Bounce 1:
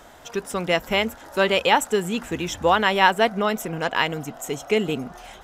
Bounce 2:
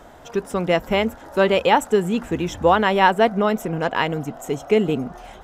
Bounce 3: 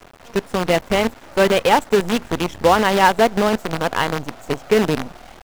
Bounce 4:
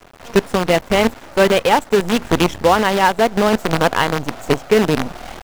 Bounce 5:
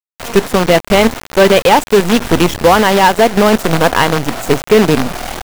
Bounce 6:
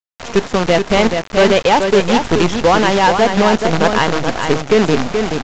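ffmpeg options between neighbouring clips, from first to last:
-af "tiltshelf=f=1.4k:g=5"
-af "acrusher=bits=4:dc=4:mix=0:aa=0.000001,highshelf=f=6.8k:g=-9.5,volume=1.5dB"
-af "dynaudnorm=f=120:g=3:m=10.5dB,volume=-1dB"
-af "acrusher=bits=4:mix=0:aa=0.000001,asoftclip=type=tanh:threshold=-9dB,volume=8dB"
-filter_complex "[0:a]asplit=2[a][b];[b]aecho=0:1:428:0.501[c];[a][c]amix=inputs=2:normalize=0,aresample=16000,aresample=44100,volume=-3.5dB"

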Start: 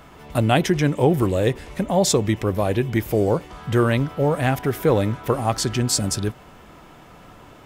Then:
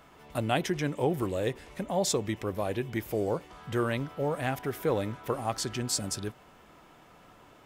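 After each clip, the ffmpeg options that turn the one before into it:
-af "lowshelf=f=200:g=-6.5,volume=-8.5dB"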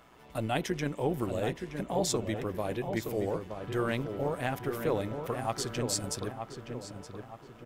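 -filter_complex "[0:a]tremolo=f=120:d=0.519,asplit=2[a][b];[b]adelay=921,lowpass=f=2k:p=1,volume=-6.5dB,asplit=2[c][d];[d]adelay=921,lowpass=f=2k:p=1,volume=0.44,asplit=2[e][f];[f]adelay=921,lowpass=f=2k:p=1,volume=0.44,asplit=2[g][h];[h]adelay=921,lowpass=f=2k:p=1,volume=0.44,asplit=2[i][j];[j]adelay=921,lowpass=f=2k:p=1,volume=0.44[k];[a][c][e][g][i][k]amix=inputs=6:normalize=0"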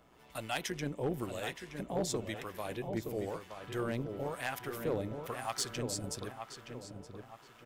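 -filter_complex "[0:a]acrossover=split=730[a][b];[a]aeval=exprs='val(0)*(1-0.7/2+0.7/2*cos(2*PI*1*n/s))':c=same[c];[b]aeval=exprs='val(0)*(1-0.7/2-0.7/2*cos(2*PI*1*n/s))':c=same[d];[c][d]amix=inputs=2:normalize=0,tiltshelf=f=1.5k:g=-3,volume=26dB,asoftclip=hard,volume=-26dB"

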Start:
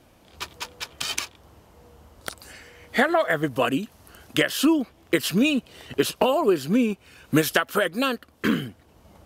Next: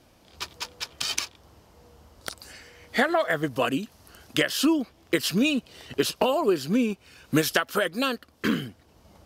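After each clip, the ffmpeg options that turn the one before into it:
-af "equalizer=f=5k:t=o:w=0.77:g=5.5,volume=-2.5dB"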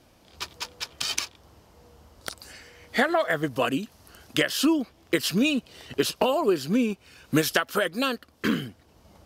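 -af anull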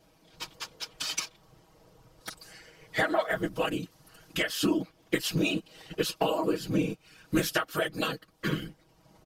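-af "afftfilt=real='hypot(re,im)*cos(2*PI*random(0))':imag='hypot(re,im)*sin(2*PI*random(1))':win_size=512:overlap=0.75,aecho=1:1:6.3:0.65"

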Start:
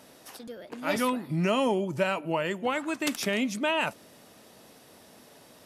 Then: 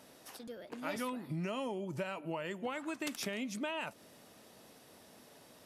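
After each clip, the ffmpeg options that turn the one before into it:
-af "acompressor=threshold=-30dB:ratio=6,volume=-5dB"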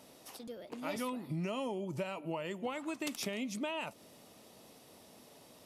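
-af "equalizer=f=1.6k:t=o:w=0.45:g=-7.5,volume=1dB"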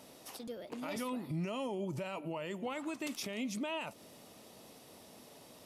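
-af "alimiter=level_in=8.5dB:limit=-24dB:level=0:latency=1:release=24,volume=-8.5dB,volume=2dB"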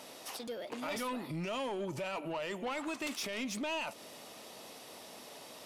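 -filter_complex "[0:a]asplit=2[a][b];[b]highpass=f=720:p=1,volume=14dB,asoftclip=type=tanh:threshold=-30dB[c];[a][c]amix=inputs=2:normalize=0,lowpass=f=6.8k:p=1,volume=-6dB"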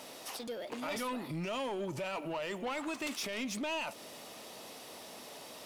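-af "aeval=exprs='val(0)+0.5*0.00141*sgn(val(0))':c=same"

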